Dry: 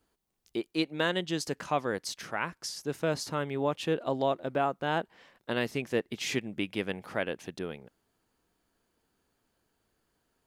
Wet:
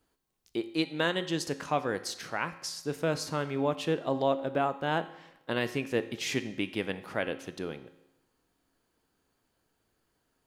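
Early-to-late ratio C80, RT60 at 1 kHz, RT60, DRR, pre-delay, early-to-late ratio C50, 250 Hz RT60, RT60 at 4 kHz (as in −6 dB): 15.5 dB, 0.95 s, 0.95 s, 10.5 dB, 4 ms, 13.5 dB, 0.95 s, 0.85 s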